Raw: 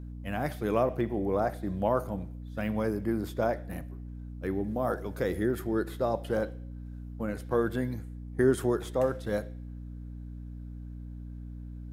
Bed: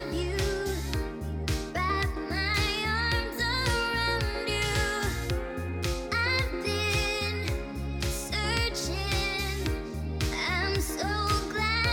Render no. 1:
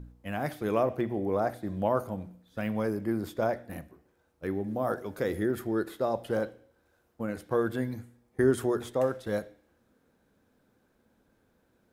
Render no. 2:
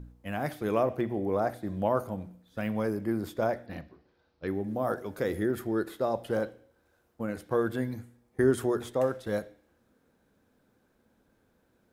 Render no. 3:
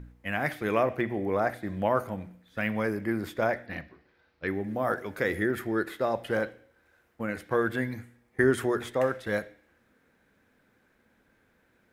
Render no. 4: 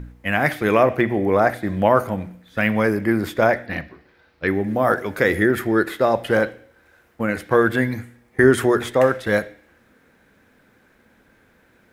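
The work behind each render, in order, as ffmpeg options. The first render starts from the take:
-af "bandreject=f=60:t=h:w=4,bandreject=f=120:t=h:w=4,bandreject=f=180:t=h:w=4,bandreject=f=240:t=h:w=4,bandreject=f=300:t=h:w=4"
-filter_complex "[0:a]asettb=1/sr,asplit=3[a][b][c];[a]atrim=end=3.664[d];[b]atrim=start=3.66:end=4.48,asetpts=PTS-STARTPTS,afade=t=in:d=0.004:c=qsin,afade=t=out:st=0.816:d=0.004:c=qsin,highshelf=f=6.3k:t=q:w=3:g=-12.5[e];[c]atrim=start=4.476[f];[d][e]acrossfade=d=0.004:c1=hsin:c2=qsin[g];[g][f]acrossfade=d=0.004:c1=qsin:c2=hsin"
-af "equalizer=f=2k:t=o:w=1.1:g=11.5"
-af "volume=10dB,alimiter=limit=-3dB:level=0:latency=1"

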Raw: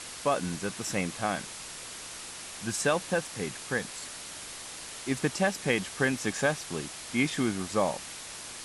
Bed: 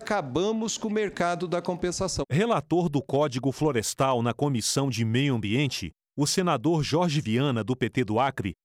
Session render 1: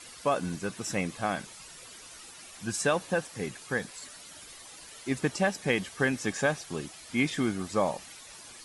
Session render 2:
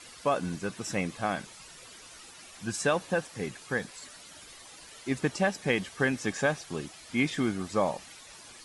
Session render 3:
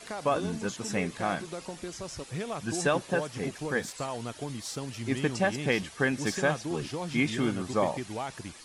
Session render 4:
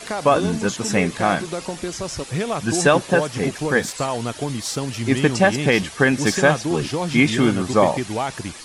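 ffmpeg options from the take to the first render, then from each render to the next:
-af "afftdn=nr=11:nf=-43"
-af "highshelf=f=11k:g=-8.5"
-filter_complex "[1:a]volume=-11.5dB[a];[0:a][a]amix=inputs=2:normalize=0"
-af "volume=11dB,alimiter=limit=-3dB:level=0:latency=1"

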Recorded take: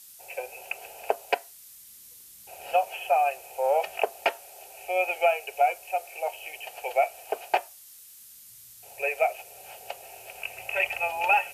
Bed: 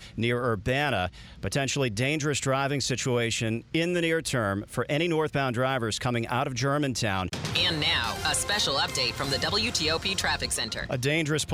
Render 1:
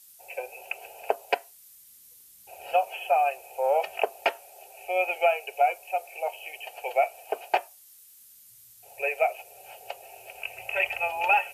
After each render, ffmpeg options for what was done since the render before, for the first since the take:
-af "afftdn=nr=6:nf=-50"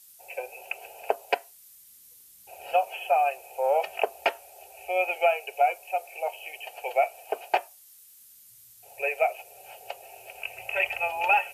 -filter_complex "[0:a]asettb=1/sr,asplit=3[a][b][c];[a]atrim=end=4.074[d];[b]atrim=start=4.07:end=4.9,asetpts=PTS-STARTPTS,afade=t=in:d=0.004:c=qsin,afade=t=out:st=0.826:d=0.004:c=qsin,equalizer=f=70:w=1.5:g=10[e];[c]atrim=start=4.896[f];[d][e]acrossfade=d=0.004:c1=hsin:c2=qsin[g];[g][f]acrossfade=d=0.004:c1=qsin:c2=hsin"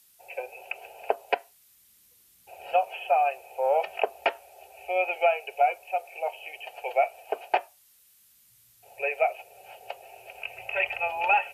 -filter_complex "[0:a]acrossover=split=4000[a][b];[b]acompressor=threshold=-57dB:ratio=4:attack=1:release=60[c];[a][c]amix=inputs=2:normalize=0"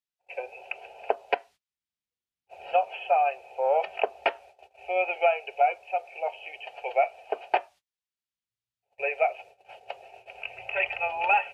-af "agate=range=-28dB:threshold=-48dB:ratio=16:detection=peak,lowpass=4.5k"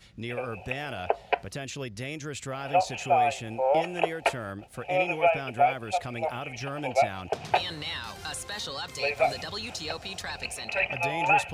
-filter_complex "[1:a]volume=-9.5dB[a];[0:a][a]amix=inputs=2:normalize=0"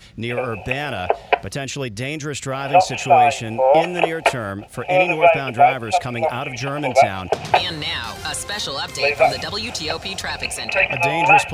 -af "volume=10dB,alimiter=limit=-1dB:level=0:latency=1"

